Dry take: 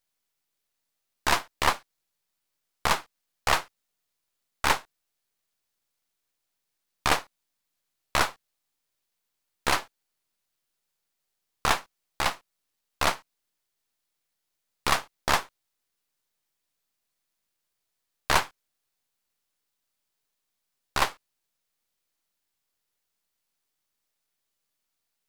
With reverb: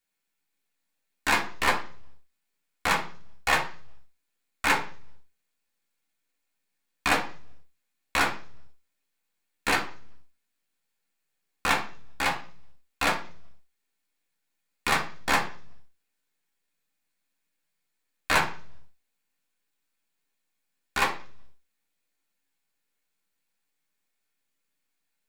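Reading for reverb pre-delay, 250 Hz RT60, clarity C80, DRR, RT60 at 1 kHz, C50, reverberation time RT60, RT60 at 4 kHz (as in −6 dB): 3 ms, 0.70 s, 16.5 dB, −2.5 dB, 0.40 s, 12.0 dB, 0.45 s, 0.55 s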